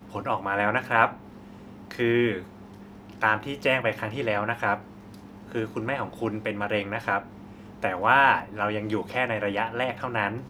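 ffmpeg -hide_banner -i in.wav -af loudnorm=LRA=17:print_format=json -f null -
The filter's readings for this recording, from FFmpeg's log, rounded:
"input_i" : "-25.7",
"input_tp" : "-3.9",
"input_lra" : "4.6",
"input_thresh" : "-36.4",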